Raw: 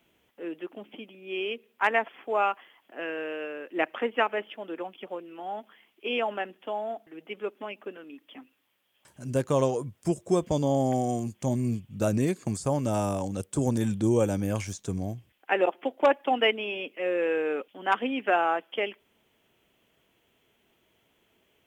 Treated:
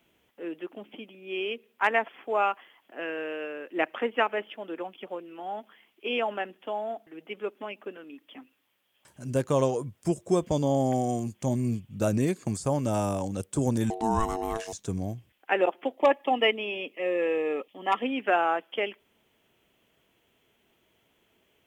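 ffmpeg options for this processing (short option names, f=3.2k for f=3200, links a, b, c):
-filter_complex "[0:a]asettb=1/sr,asplit=3[a][b][c];[a]atrim=end=13.904[d];[b]atrim=start=13.9:end=14.73,asetpts=PTS-STARTPTS,afade=t=in:d=0.004:c=qsin,afade=t=out:st=0.826:d=0.004:c=qsin,aeval=exprs='val(0)*sin(2*PI*560*n/s)':c=same[e];[c]atrim=start=14.726[f];[d][e]acrossfade=d=0.004:c1=hsin:c2=qsin[g];[g][f]acrossfade=d=0.004:c1=qsin:c2=hsin,asettb=1/sr,asplit=3[h][i][j];[h]atrim=end=15.954[k];[i]atrim=start=15.95:end=18.03,asetpts=PTS-STARTPTS,afade=t=in:d=0.004:c=qsin,afade=t=out:st=2.076:d=0.004:c=qsin,asuperstop=centerf=1500:order=12:qfactor=5.5[l];[j]atrim=start=18.026[m];[k][l]acrossfade=d=0.004:c1=hsin:c2=qsin[n];[n][m]acrossfade=d=0.004:c1=qsin:c2=hsin"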